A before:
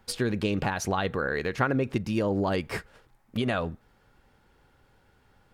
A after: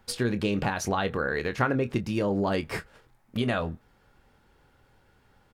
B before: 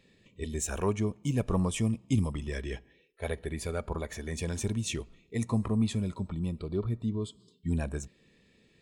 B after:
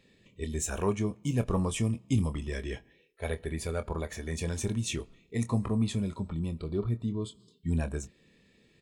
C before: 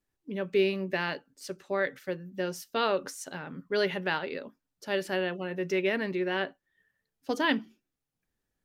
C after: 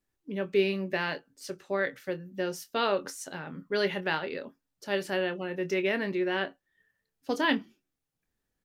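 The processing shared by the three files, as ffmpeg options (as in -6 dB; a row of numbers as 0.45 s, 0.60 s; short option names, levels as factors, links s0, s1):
-filter_complex "[0:a]asplit=2[s0][s1];[s1]adelay=25,volume=0.282[s2];[s0][s2]amix=inputs=2:normalize=0"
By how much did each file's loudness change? +0.5 LU, 0.0 LU, 0.0 LU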